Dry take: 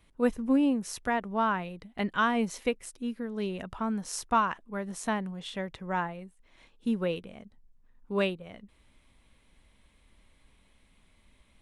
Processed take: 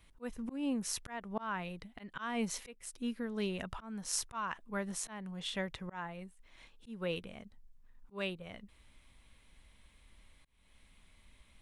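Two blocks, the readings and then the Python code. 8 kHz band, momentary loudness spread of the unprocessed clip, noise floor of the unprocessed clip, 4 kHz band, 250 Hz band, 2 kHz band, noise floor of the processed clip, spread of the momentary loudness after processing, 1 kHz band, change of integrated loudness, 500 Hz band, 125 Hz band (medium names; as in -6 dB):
+1.0 dB, 11 LU, -64 dBFS, -2.0 dB, -9.5 dB, -8.5 dB, -65 dBFS, 14 LU, -12.5 dB, -9.0 dB, -9.5 dB, -6.0 dB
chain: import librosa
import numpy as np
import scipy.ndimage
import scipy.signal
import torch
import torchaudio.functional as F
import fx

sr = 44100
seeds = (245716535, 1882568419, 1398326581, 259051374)

y = fx.peak_eq(x, sr, hz=340.0, db=-5.5, octaves=3.0)
y = fx.auto_swell(y, sr, attack_ms=327.0)
y = y * librosa.db_to_amplitude(1.5)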